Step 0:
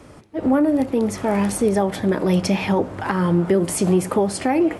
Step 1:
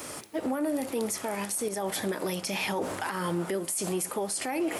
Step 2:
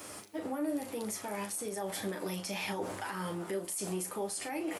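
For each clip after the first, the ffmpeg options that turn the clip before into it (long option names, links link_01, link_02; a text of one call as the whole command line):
ffmpeg -i in.wav -af "aemphasis=mode=production:type=riaa,areverse,acompressor=threshold=-28dB:ratio=6,areverse,alimiter=level_in=3dB:limit=-24dB:level=0:latency=1:release=94,volume=-3dB,volume=5.5dB" out.wav
ffmpeg -i in.wav -af "aecho=1:1:10|38:0.562|0.447,volume=-8dB" out.wav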